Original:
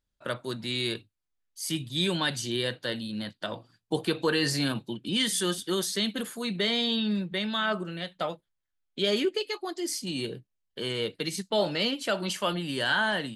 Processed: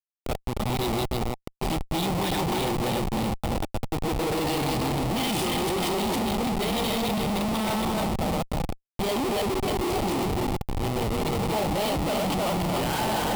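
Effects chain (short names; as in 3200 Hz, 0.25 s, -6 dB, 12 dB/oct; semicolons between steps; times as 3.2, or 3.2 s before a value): regenerating reverse delay 0.154 s, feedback 70%, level 0 dB; Schmitt trigger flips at -26 dBFS; thirty-one-band EQ 800 Hz +8 dB, 1600 Hz -10 dB, 6300 Hz -4 dB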